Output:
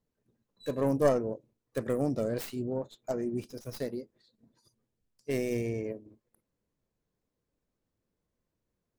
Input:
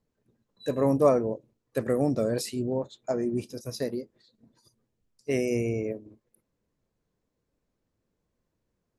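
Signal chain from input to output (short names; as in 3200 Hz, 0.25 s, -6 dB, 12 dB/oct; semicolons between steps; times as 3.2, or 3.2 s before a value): tracing distortion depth 0.25 ms; gain -4.5 dB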